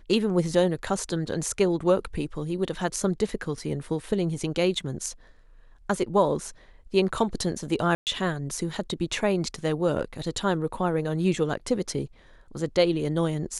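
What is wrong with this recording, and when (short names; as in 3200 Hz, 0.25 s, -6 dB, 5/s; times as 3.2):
7.95–8.07 gap 0.118 s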